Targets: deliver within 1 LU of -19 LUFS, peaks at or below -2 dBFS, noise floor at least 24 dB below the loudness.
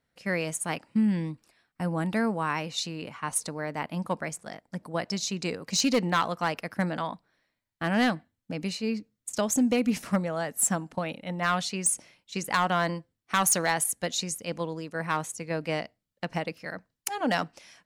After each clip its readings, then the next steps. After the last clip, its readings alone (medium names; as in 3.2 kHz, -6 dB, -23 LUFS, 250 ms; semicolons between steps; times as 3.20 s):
clipped samples 0.3%; clipping level -17.0 dBFS; loudness -29.0 LUFS; peak level -17.0 dBFS; loudness target -19.0 LUFS
-> clip repair -17 dBFS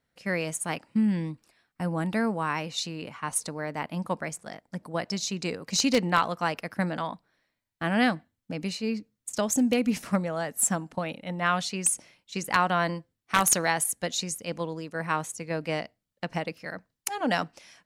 clipped samples 0.0%; loudness -28.5 LUFS; peak level -8.0 dBFS; loudness target -19.0 LUFS
-> trim +9.5 dB; peak limiter -2 dBFS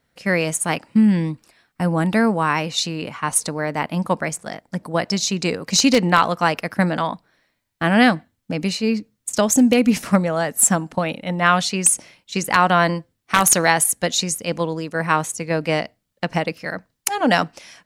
loudness -19.5 LUFS; peak level -2.0 dBFS; noise floor -73 dBFS